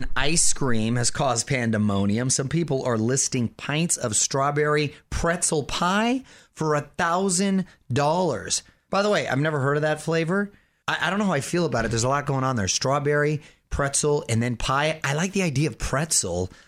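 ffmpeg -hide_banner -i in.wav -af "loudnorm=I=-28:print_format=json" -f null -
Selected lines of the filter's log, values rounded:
"input_i" : "-23.4",
"input_tp" : "-5.5",
"input_lra" : "1.2",
"input_thresh" : "-33.5",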